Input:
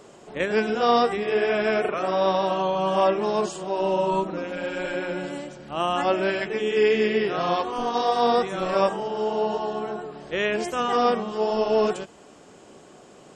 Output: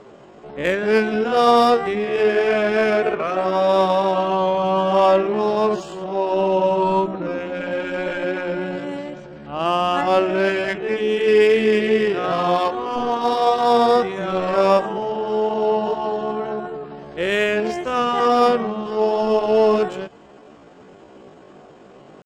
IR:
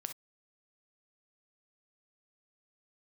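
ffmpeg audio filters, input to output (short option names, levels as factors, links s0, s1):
-af "adynamicsmooth=sensitivity=3:basefreq=3500,atempo=0.6,volume=1.78"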